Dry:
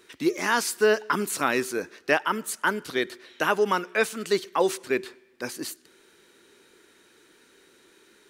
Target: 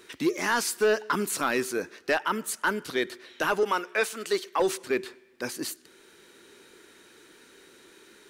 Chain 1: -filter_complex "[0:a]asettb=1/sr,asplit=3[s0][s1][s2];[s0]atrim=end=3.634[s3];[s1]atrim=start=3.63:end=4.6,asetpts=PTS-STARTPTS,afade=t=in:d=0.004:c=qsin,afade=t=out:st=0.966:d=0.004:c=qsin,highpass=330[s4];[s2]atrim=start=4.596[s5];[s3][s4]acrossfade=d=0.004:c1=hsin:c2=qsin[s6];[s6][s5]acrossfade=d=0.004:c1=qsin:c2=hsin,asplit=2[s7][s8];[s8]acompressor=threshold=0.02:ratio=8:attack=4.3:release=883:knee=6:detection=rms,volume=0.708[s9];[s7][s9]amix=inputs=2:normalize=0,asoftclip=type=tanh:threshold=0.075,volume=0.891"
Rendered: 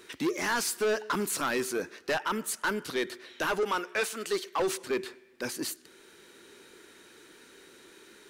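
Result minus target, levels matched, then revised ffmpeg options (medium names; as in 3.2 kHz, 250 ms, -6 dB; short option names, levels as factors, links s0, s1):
saturation: distortion +8 dB
-filter_complex "[0:a]asettb=1/sr,asplit=3[s0][s1][s2];[s0]atrim=end=3.634[s3];[s1]atrim=start=3.63:end=4.6,asetpts=PTS-STARTPTS,afade=t=in:d=0.004:c=qsin,afade=t=out:st=0.966:d=0.004:c=qsin,highpass=330[s4];[s2]atrim=start=4.596[s5];[s3][s4]acrossfade=d=0.004:c1=hsin:c2=qsin[s6];[s6][s5]acrossfade=d=0.004:c1=qsin:c2=hsin,asplit=2[s7][s8];[s8]acompressor=threshold=0.02:ratio=8:attack=4.3:release=883:knee=6:detection=rms,volume=0.708[s9];[s7][s9]amix=inputs=2:normalize=0,asoftclip=type=tanh:threshold=0.188,volume=0.891"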